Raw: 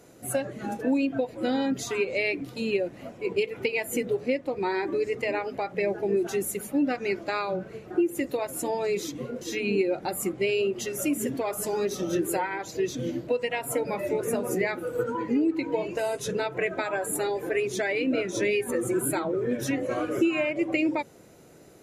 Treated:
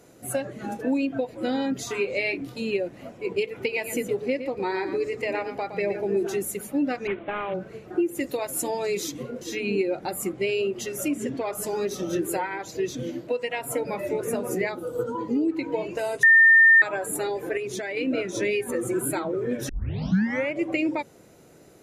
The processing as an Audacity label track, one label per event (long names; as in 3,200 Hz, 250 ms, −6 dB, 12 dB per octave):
1.840000	2.560000	double-tracking delay 25 ms −8 dB
3.600000	6.390000	single-tap delay 116 ms −10 dB
7.070000	7.540000	variable-slope delta modulation 16 kbit/s
8.200000	9.230000	high-shelf EQ 3,400 Hz +6.5 dB
11.080000	11.550000	low-pass filter 6,400 Hz
13.030000	13.580000	low-shelf EQ 120 Hz −11.5 dB
14.690000	15.480000	flat-topped bell 2,000 Hz −11 dB 1 octave
16.230000	16.820000	beep over 1,810 Hz −11 dBFS
17.570000	17.970000	downward compressor, threshold −27 dBFS
19.690000	19.690000	tape start 0.82 s